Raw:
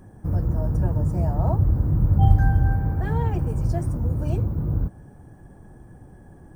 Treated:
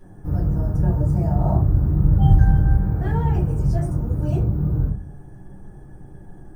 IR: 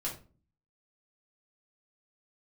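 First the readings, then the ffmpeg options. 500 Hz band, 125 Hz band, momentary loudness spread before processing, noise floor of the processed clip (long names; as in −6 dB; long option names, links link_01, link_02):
+1.5 dB, +2.5 dB, 8 LU, −42 dBFS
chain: -filter_complex "[1:a]atrim=start_sample=2205,asetrate=52920,aresample=44100[link_01];[0:a][link_01]afir=irnorm=-1:irlink=0"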